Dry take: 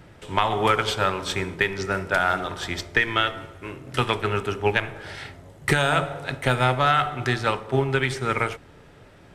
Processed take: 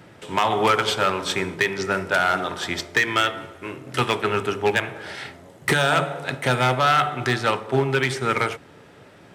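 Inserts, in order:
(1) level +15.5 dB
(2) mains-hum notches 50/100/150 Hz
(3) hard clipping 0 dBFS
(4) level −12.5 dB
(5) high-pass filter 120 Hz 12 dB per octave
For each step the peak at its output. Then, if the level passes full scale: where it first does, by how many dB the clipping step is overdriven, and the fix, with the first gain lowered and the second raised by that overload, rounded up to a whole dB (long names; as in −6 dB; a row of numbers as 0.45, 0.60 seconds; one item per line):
+8.5, +9.0, 0.0, −12.5, −7.5 dBFS
step 1, 9.0 dB
step 1 +6.5 dB, step 4 −3.5 dB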